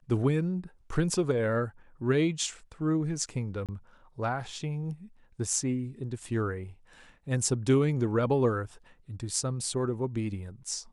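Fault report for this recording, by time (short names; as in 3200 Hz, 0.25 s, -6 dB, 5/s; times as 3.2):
3.66–3.69 gap 27 ms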